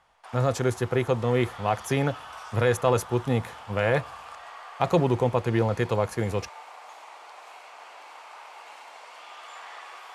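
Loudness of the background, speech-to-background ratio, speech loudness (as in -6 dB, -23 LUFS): -43.5 LUFS, 17.5 dB, -26.0 LUFS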